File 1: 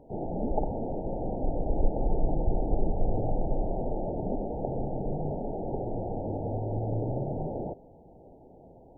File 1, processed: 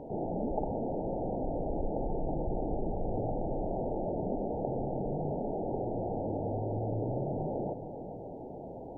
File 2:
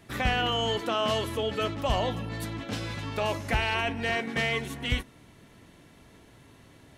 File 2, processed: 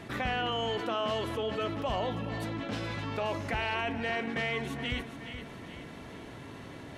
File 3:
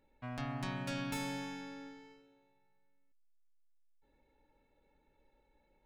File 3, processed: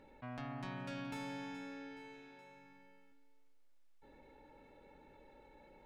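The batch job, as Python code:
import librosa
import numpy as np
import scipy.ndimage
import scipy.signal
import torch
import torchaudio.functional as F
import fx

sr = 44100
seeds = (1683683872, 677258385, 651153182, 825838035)

y = fx.lowpass(x, sr, hz=2800.0, slope=6)
y = fx.low_shelf(y, sr, hz=85.0, db=-9.5)
y = fx.echo_feedback(y, sr, ms=422, feedback_pct=33, wet_db=-18)
y = fx.env_flatten(y, sr, amount_pct=50)
y = y * librosa.db_to_amplitude(-4.5)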